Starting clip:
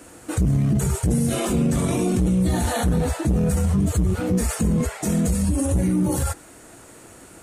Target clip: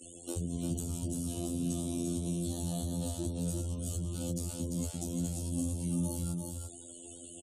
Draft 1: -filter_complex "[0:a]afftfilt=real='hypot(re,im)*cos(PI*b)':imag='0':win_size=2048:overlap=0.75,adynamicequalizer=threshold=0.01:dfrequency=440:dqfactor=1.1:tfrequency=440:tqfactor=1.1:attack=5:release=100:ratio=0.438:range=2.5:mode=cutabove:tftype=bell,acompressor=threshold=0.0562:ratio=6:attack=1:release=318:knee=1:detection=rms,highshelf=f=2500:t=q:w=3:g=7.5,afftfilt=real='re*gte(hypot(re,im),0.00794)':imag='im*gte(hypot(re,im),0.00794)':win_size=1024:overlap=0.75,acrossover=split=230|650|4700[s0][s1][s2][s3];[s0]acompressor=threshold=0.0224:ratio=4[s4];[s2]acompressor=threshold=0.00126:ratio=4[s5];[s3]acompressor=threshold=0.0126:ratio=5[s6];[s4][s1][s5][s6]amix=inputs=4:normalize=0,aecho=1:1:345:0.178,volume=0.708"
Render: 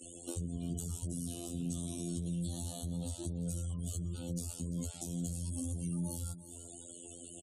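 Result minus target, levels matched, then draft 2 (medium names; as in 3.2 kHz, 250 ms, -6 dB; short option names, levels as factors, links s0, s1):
echo-to-direct -11 dB; compression: peak gain reduction +6 dB
-filter_complex "[0:a]afftfilt=real='hypot(re,im)*cos(PI*b)':imag='0':win_size=2048:overlap=0.75,adynamicequalizer=threshold=0.01:dfrequency=440:dqfactor=1.1:tfrequency=440:tqfactor=1.1:attack=5:release=100:ratio=0.438:range=2.5:mode=cutabove:tftype=bell,acompressor=threshold=0.126:ratio=6:attack=1:release=318:knee=1:detection=rms,highshelf=f=2500:t=q:w=3:g=7.5,afftfilt=real='re*gte(hypot(re,im),0.00794)':imag='im*gte(hypot(re,im),0.00794)':win_size=1024:overlap=0.75,acrossover=split=230|650|4700[s0][s1][s2][s3];[s0]acompressor=threshold=0.0224:ratio=4[s4];[s2]acompressor=threshold=0.00126:ratio=4[s5];[s3]acompressor=threshold=0.0126:ratio=5[s6];[s4][s1][s5][s6]amix=inputs=4:normalize=0,aecho=1:1:345:0.631,volume=0.708"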